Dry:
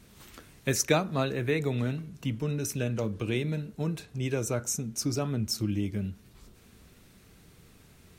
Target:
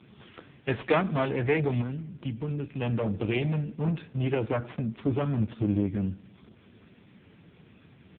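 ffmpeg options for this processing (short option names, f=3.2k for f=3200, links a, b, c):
-filter_complex "[0:a]asettb=1/sr,asplit=3[a][b][c];[a]atrim=end=1.814[d];[b]atrim=start=1.81:end=2.82,asetpts=PTS-STARTPTS,afade=t=in:d=0.004:c=qsin,afade=t=out:st=1.006:d=0.004:c=qsin,acompressor=threshold=-39dB:ratio=2[e];[c]atrim=start=2.816[f];[d][e]acrossfade=d=0.004:c1=hsin:c2=qsin[g];[g][f]acrossfade=d=0.004:c1=qsin:c2=hsin,asettb=1/sr,asplit=3[h][i][j];[h]atrim=end=5.634[k];[i]atrim=start=5.63:end=6.07,asetpts=PTS-STARTPTS,afade=t=in:d=0.004:c=qsin,afade=t=out:st=0.436:d=0.004:c=qsin,adynamicequalizer=threshold=0.00224:dfrequency=130:dqfactor=5.7:tfrequency=130:tqfactor=5.7:attack=5:release=100:ratio=0.375:range=1.5:mode=cutabove:tftype=bell[l];[j]atrim=start=6.066[m];[k][l]acrossfade=d=0.004:c1=hsin:c2=qsin[n];[n][m]acrossfade=d=0.004:c1=qsin:c2=hsin,aeval=exprs='clip(val(0),-1,0.0251)':c=same,aecho=1:1:96|192|288|384:0.0668|0.0388|0.0225|0.013,volume=6.5dB" -ar 8000 -c:a libopencore_amrnb -b:a 5150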